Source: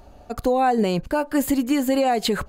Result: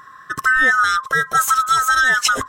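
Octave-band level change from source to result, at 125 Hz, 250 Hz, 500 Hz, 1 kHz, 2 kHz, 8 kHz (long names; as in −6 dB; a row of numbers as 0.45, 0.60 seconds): −5.5, −16.5, −11.5, +6.5, +19.0, +11.5 decibels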